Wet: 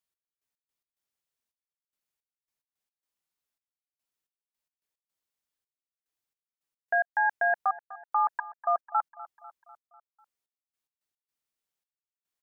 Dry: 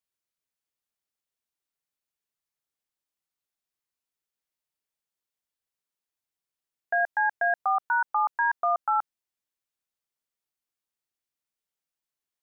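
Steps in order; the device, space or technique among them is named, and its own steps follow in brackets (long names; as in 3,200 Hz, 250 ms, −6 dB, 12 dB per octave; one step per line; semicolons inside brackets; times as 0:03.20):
trance gate with a delay (gate pattern "x..x.x.xxxx...x" 109 BPM −60 dB; repeating echo 248 ms, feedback 57%, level −18 dB)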